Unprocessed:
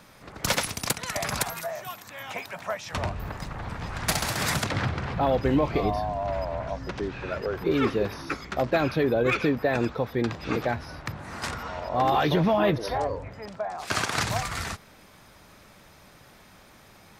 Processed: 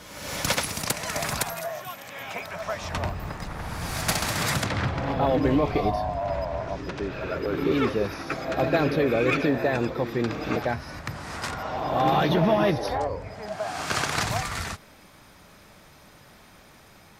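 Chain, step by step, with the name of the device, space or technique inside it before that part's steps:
reverse reverb (reversed playback; convolution reverb RT60 1.3 s, pre-delay 84 ms, DRR 6 dB; reversed playback)

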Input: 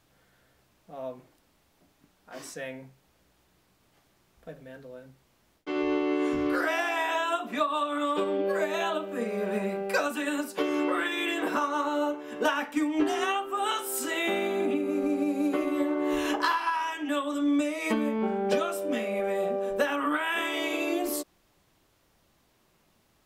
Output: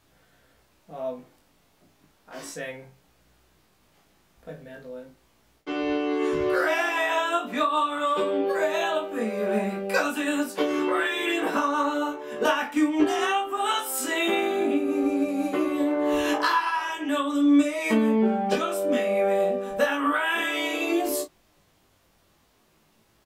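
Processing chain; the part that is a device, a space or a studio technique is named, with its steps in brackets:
double-tracked vocal (double-tracking delay 32 ms −9 dB; chorus effect 0.34 Hz, delay 17.5 ms, depth 2.9 ms)
level +6 dB

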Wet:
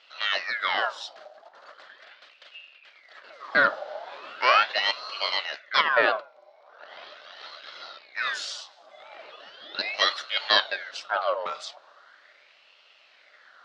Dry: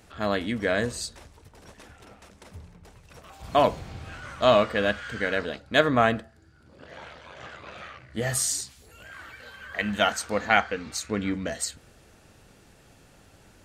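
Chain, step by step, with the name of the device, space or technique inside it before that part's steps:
voice changer toy (ring modulator whose carrier an LFO sweeps 1,700 Hz, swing 60%, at 0.39 Hz; loudspeaker in its box 580–4,600 Hz, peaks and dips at 590 Hz +10 dB, 920 Hz −4 dB, 1,400 Hz +4 dB, 2,400 Hz −7 dB, 4,200 Hz +3 dB)
level +3 dB

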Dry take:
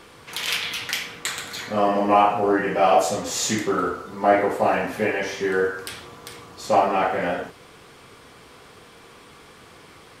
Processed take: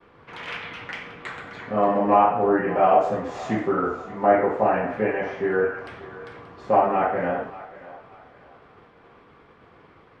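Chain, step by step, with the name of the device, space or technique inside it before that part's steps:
dynamic equaliser 4,000 Hz, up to −5 dB, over −42 dBFS, Q 1.4
hearing-loss simulation (low-pass filter 1,800 Hz 12 dB per octave; downward expander −44 dBFS)
feedback echo with a high-pass in the loop 581 ms, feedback 37%, high-pass 510 Hz, level −15.5 dB

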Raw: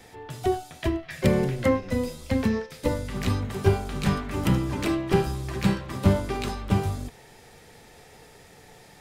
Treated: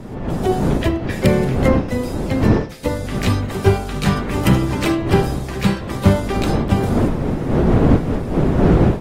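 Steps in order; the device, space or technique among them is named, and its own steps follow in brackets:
smartphone video outdoors (wind on the microphone 300 Hz −24 dBFS; automatic gain control gain up to 14 dB; level −1 dB; AAC 48 kbit/s 44,100 Hz)

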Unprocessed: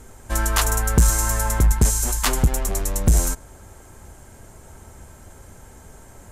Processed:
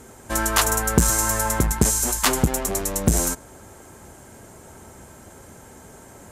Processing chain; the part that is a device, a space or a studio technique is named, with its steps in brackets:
filter by subtraction (in parallel: low-pass filter 240 Hz 12 dB per octave + polarity inversion)
on the sum: level +2 dB

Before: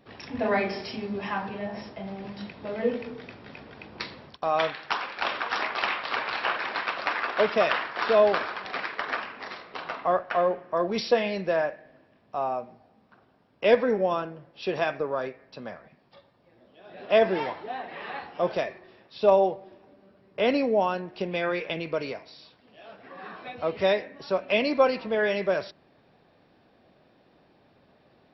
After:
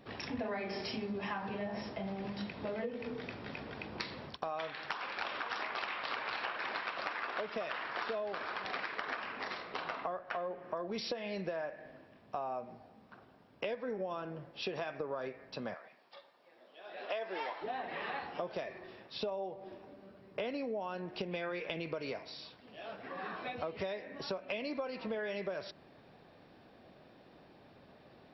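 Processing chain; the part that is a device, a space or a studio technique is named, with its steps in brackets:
0:15.74–0:17.62: Bessel high-pass filter 620 Hz, order 2
serial compression, peaks first (downward compressor 10 to 1, threshold −30 dBFS, peak gain reduction 17 dB; downward compressor 2 to 1, threshold −41 dBFS, peak gain reduction 8 dB)
level +1.5 dB

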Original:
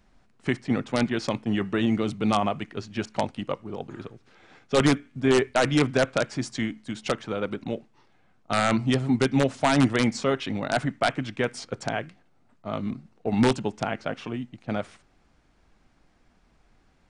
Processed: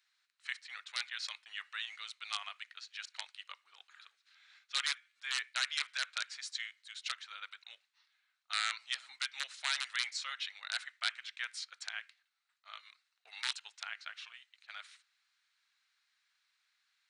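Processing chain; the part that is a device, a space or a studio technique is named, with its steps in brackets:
headphones lying on a table (high-pass filter 1,500 Hz 24 dB per octave; parametric band 4,000 Hz +9 dB 0.31 octaves)
level −6.5 dB

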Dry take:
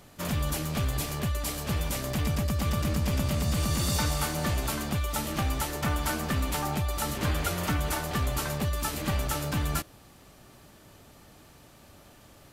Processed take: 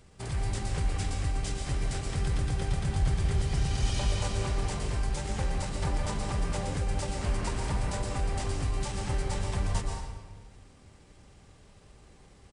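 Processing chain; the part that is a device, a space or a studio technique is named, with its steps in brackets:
monster voice (pitch shifter −7 semitones; low-shelf EQ 140 Hz +7 dB; convolution reverb RT60 1.4 s, pre-delay 113 ms, DRR 1.5 dB)
level −6.5 dB

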